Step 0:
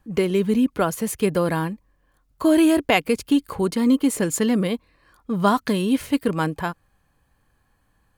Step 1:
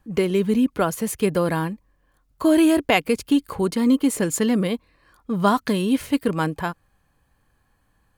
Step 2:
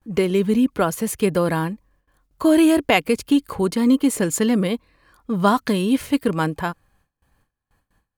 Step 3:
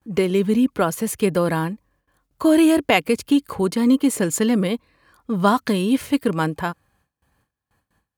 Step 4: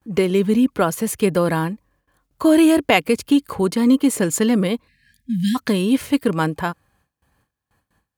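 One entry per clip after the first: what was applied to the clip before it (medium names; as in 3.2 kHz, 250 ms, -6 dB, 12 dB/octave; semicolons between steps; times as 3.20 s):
no audible change
gate with hold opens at -54 dBFS; trim +1.5 dB
high-pass 62 Hz
spectral selection erased 4.88–5.55 s, 270–1600 Hz; trim +1.5 dB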